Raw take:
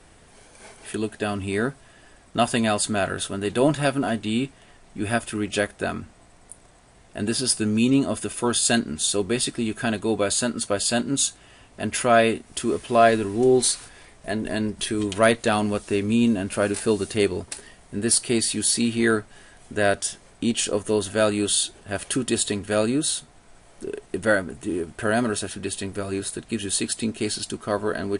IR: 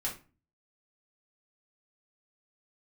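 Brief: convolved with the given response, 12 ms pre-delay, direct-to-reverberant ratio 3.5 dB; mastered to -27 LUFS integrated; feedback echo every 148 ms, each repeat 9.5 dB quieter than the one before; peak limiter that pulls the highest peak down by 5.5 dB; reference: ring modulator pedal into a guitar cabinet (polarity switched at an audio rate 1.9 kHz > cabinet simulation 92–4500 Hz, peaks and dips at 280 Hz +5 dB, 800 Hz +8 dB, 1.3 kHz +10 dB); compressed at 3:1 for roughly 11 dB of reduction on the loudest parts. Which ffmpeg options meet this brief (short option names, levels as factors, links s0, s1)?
-filter_complex "[0:a]acompressor=threshold=0.0447:ratio=3,alimiter=limit=0.106:level=0:latency=1,aecho=1:1:148|296|444|592:0.335|0.111|0.0365|0.012,asplit=2[s0][s1];[1:a]atrim=start_sample=2205,adelay=12[s2];[s1][s2]afir=irnorm=-1:irlink=0,volume=0.473[s3];[s0][s3]amix=inputs=2:normalize=0,aeval=exprs='val(0)*sgn(sin(2*PI*1900*n/s))':c=same,highpass=92,equalizer=f=280:t=q:w=4:g=5,equalizer=f=800:t=q:w=4:g=8,equalizer=f=1300:t=q:w=4:g=10,lowpass=f=4500:w=0.5412,lowpass=f=4500:w=1.3066,volume=0.891"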